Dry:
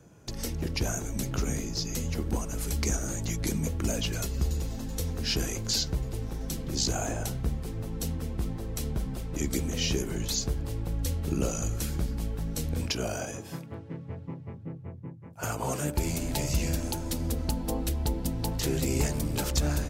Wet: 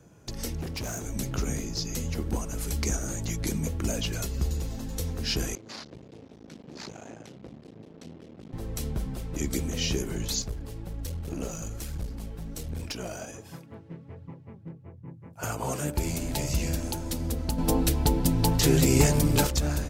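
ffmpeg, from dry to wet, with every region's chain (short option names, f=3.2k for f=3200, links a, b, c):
-filter_complex "[0:a]asettb=1/sr,asplit=3[a][b][c];[a]atrim=end=0.614[d];[b]atrim=start=0.61:end=1.06,asetpts=PTS-STARTPTS,afade=t=in:d=0.004:c=qsin,afade=t=out:st=0.446:d=0.004:c=qsin,highpass=f=61:p=1,asoftclip=type=hard:threshold=-30.5dB[e];[c]atrim=start=1.056[f];[d][e]acrossfade=d=0.004:c1=hsin:c2=qsin[g];[g][f]acrossfade=d=0.004:c1=qsin:c2=hsin,asettb=1/sr,asplit=3[h][i][j];[h]atrim=end=5.554[k];[i]atrim=start=5.55:end=8.53,asetpts=PTS-STARTPTS,afade=t=in:d=0.004:c=qsin,afade=t=out:st=2.976:d=0.004:c=qsin,equalizer=f=1.1k:w=0.58:g=-12.5,aeval=exprs='max(val(0),0)':c=same,highpass=220,lowpass=3.3k[l];[j]atrim=start=8.526[m];[k][l]acrossfade=d=0.004:c1=hsin:c2=qsin[n];[n][m]acrossfade=d=0.004:c1=qsin:c2=hsin,asettb=1/sr,asplit=3[o][p][q];[o]atrim=end=10.424[r];[p]atrim=start=10.42:end=15.08,asetpts=PTS-STARTPTS,afade=t=in:d=0.004:c=qsin,afade=t=out:st=4.656:d=0.004:c=qsin,flanger=delay=0.6:depth=5.8:regen=49:speed=1.3:shape=triangular,aeval=exprs='clip(val(0),-1,0.0211)':c=same[s];[q]atrim=start=15.076[t];[r][s]acrossfade=d=0.004:c1=hsin:c2=qsin[u];[u][t]acrossfade=d=0.004:c1=qsin:c2=hsin,asettb=1/sr,asplit=3[v][w][x];[v]atrim=end=17.584[y];[w]atrim=start=17.58:end=19.47,asetpts=PTS-STARTPTS,afade=t=in:d=0.004:c=qsin,afade=t=out:st=1.886:d=0.004:c=qsin,acontrast=73,aecho=1:1:6.9:0.4,atrim=end_sample=83349[z];[x]atrim=start=19.466[aa];[y][z]acrossfade=d=0.004:c1=hsin:c2=qsin[ab];[ab][aa]acrossfade=d=0.004:c1=qsin:c2=hsin"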